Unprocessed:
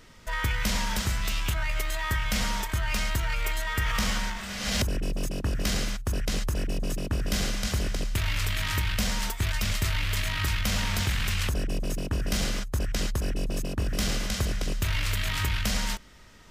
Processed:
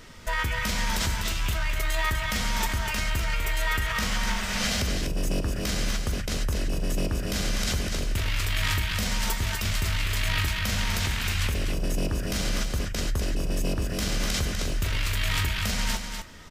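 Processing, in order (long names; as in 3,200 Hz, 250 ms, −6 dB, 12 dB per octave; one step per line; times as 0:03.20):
in parallel at +2 dB: compressor whose output falls as the input rises −30 dBFS, ratio −0.5
on the sum: tuned comb filter 81 Hz, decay 0.2 s, harmonics all, mix 60%
single-tap delay 248 ms −6.5 dB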